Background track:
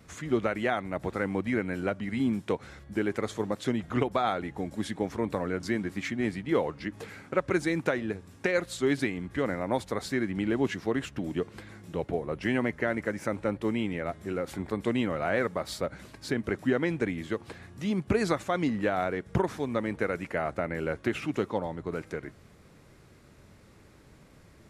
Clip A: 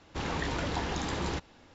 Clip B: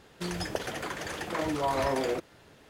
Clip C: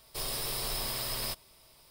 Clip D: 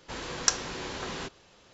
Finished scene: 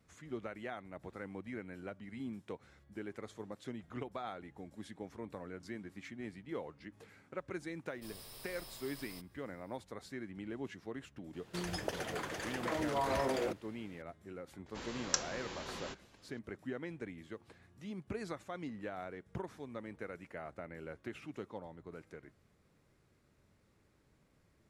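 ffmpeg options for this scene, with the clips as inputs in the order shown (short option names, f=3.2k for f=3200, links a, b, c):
-filter_complex "[0:a]volume=-15.5dB[a];[3:a]atrim=end=1.9,asetpts=PTS-STARTPTS,volume=-17.5dB,afade=t=in:d=0.004:c=hsin,afade=t=out:st=1.896:d=0.004:c=hsin,adelay=7870[b];[2:a]atrim=end=2.69,asetpts=PTS-STARTPTS,volume=-5.5dB,afade=t=in:d=0.004:c=hsin,afade=t=out:st=2.686:d=0.004:c=hsin,adelay=11330[c];[4:a]atrim=end=1.73,asetpts=PTS-STARTPTS,volume=-8.5dB,afade=t=in:d=0.004:c=hsin,afade=t=out:st=1.726:d=0.004:c=hsin,adelay=14660[d];[a][b][c][d]amix=inputs=4:normalize=0"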